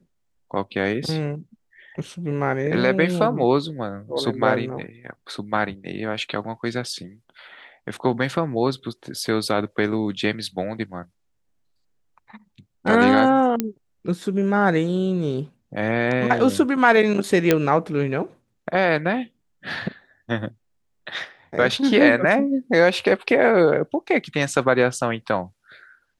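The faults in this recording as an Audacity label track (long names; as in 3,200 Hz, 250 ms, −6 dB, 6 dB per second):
13.600000	13.600000	click −7 dBFS
17.510000	17.510000	click −2 dBFS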